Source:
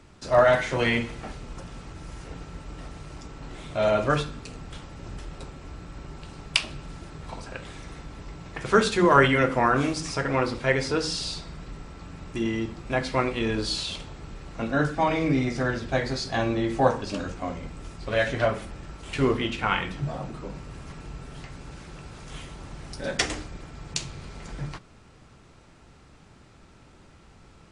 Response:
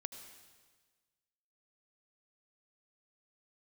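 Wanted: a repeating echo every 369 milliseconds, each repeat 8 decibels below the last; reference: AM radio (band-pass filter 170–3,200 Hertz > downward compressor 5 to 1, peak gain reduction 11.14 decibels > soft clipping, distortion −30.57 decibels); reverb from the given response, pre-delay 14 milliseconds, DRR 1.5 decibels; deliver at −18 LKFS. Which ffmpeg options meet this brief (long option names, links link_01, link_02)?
-filter_complex "[0:a]aecho=1:1:369|738|1107|1476|1845:0.398|0.159|0.0637|0.0255|0.0102,asplit=2[link_01][link_02];[1:a]atrim=start_sample=2205,adelay=14[link_03];[link_02][link_03]afir=irnorm=-1:irlink=0,volume=1dB[link_04];[link_01][link_04]amix=inputs=2:normalize=0,highpass=170,lowpass=3200,acompressor=threshold=-22dB:ratio=5,asoftclip=threshold=-10.5dB,volume=11dB"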